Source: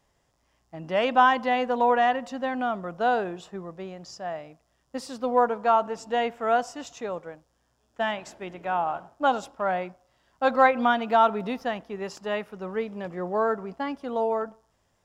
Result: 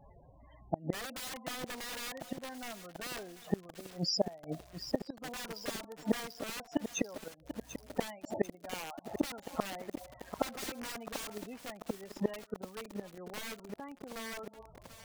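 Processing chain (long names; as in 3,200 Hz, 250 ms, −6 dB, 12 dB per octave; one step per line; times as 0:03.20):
spectral peaks only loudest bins 16
wrap-around overflow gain 21 dB
gate with flip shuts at −31 dBFS, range −31 dB
feedback echo at a low word length 740 ms, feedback 80%, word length 10 bits, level −9.5 dB
level +15 dB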